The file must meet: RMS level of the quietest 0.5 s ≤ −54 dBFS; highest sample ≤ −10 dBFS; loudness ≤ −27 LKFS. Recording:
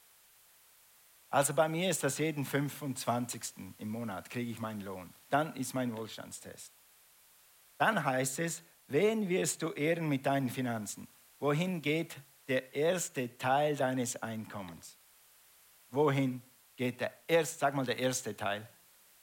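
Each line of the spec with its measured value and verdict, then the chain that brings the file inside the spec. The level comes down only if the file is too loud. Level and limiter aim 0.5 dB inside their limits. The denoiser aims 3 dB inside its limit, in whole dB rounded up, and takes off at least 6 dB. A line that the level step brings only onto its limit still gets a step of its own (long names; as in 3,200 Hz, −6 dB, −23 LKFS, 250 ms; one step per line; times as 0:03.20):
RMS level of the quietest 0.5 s −63 dBFS: in spec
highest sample −15.5 dBFS: in spec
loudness −33.5 LKFS: in spec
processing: no processing needed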